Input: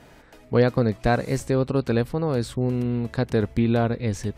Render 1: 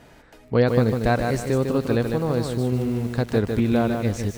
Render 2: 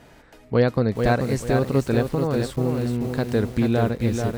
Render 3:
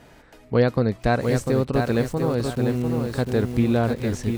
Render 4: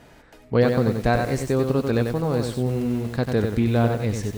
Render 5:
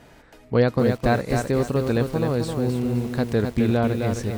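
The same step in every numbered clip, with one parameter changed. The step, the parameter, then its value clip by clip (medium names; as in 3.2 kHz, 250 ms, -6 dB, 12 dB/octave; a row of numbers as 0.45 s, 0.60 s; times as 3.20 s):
bit-crushed delay, time: 151 ms, 436 ms, 697 ms, 94 ms, 262 ms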